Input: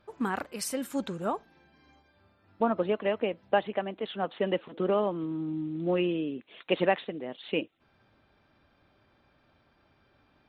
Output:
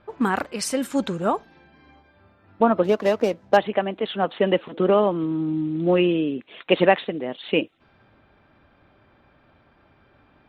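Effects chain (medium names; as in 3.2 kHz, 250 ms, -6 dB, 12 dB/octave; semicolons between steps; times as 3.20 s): 2.84–3.57 s: median filter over 15 samples; level-controlled noise filter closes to 2.8 kHz, open at -27.5 dBFS; trim +8.5 dB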